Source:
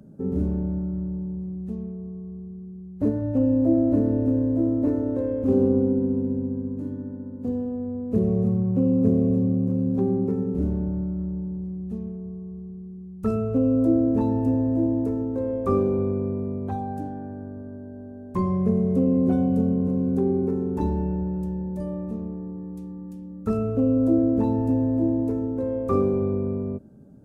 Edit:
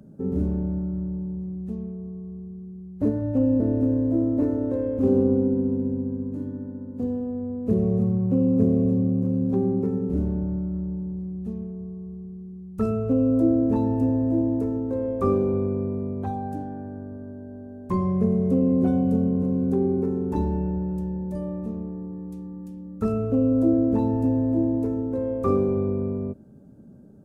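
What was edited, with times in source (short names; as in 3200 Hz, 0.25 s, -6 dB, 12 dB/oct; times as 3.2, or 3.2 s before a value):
3.6–4.05 cut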